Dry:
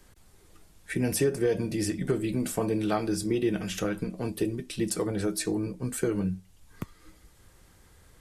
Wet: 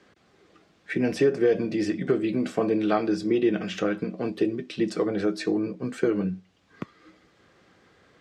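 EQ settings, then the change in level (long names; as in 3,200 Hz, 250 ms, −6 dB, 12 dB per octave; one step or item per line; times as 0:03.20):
high-pass filter 210 Hz 12 dB per octave
high-frequency loss of the air 180 metres
notch filter 910 Hz, Q 7.9
+5.5 dB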